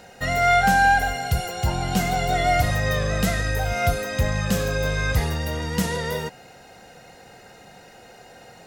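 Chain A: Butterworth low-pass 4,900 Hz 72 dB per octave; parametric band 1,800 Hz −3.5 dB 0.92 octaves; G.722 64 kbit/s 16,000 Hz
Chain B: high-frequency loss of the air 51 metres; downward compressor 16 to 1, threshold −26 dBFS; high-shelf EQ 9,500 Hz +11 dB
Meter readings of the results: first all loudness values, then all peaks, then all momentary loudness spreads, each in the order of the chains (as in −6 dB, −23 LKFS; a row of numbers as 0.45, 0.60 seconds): −23.5, −30.5 LKFS; −9.5, −16.5 dBFS; 9, 18 LU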